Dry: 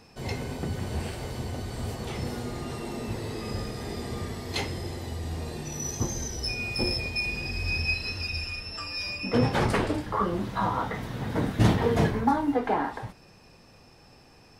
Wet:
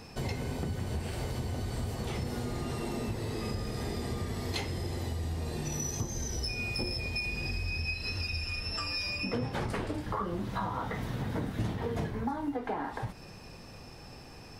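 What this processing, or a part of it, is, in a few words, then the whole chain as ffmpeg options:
ASMR close-microphone chain: -af "lowshelf=f=150:g=4,acompressor=threshold=0.0158:ratio=6,highshelf=f=12000:g=3,volume=1.68"

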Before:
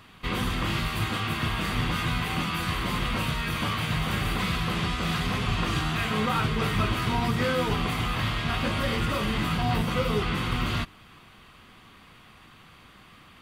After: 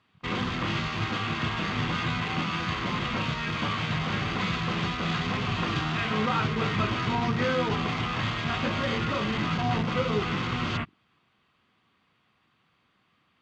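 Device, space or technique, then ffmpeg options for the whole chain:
over-cleaned archive recording: -af "highpass=100,lowpass=5600,afwtdn=0.0126"

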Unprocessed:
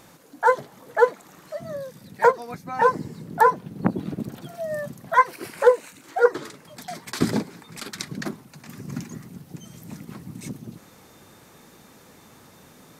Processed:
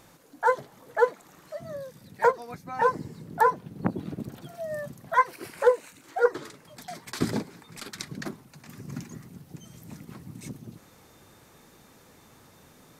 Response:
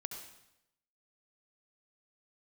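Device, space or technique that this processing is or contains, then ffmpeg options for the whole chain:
low shelf boost with a cut just above: -af "lowshelf=f=82:g=6.5,equalizer=f=200:t=o:w=0.77:g=-2.5,volume=0.596"

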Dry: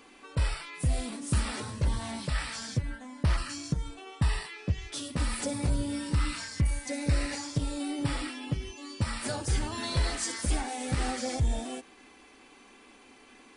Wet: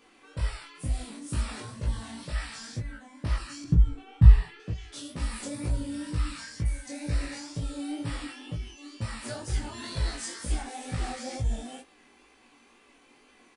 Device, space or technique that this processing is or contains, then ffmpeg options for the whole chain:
double-tracked vocal: -filter_complex "[0:a]asplit=2[s0][s1];[s1]adelay=17,volume=0.631[s2];[s0][s2]amix=inputs=2:normalize=0,flanger=delay=18.5:depth=6.9:speed=2.1,asettb=1/sr,asplit=3[s3][s4][s5];[s3]atrim=end=3.644[s6];[s4]atrim=start=3.64:end=4.6,asetpts=PTS-STARTPTS,afade=t=in:d=0.004:c=qsin,afade=t=out:st=0.956:d=0.004:c=qsin,bass=f=250:g=15,treble=f=4000:g=-10[s7];[s5]atrim=start=4.596[s8];[s6][s7]acrossfade=d=0.004:c1=hsin:c2=qsin[s9];[s9][s8]acrossfade=d=0.004:c1=qsin:c2=hsin,volume=0.75"

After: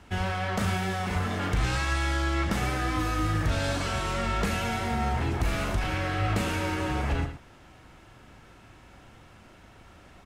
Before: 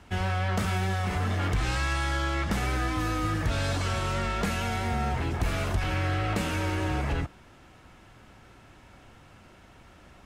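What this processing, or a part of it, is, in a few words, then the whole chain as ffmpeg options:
slapback doubling: -filter_complex "[0:a]asplit=3[s0][s1][s2];[s1]adelay=39,volume=0.355[s3];[s2]adelay=114,volume=0.282[s4];[s0][s3][s4]amix=inputs=3:normalize=0"

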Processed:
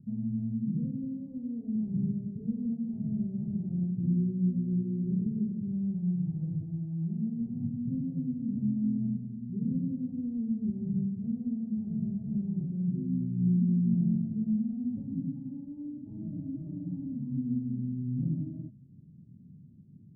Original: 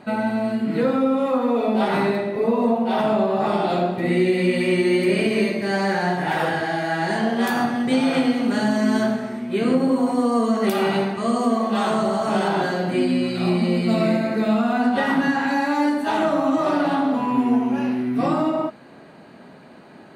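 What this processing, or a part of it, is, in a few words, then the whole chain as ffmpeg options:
the neighbour's flat through the wall: -af "lowpass=f=170:w=0.5412,lowpass=f=170:w=1.3066,equalizer=f=110:t=o:w=0.91:g=6"

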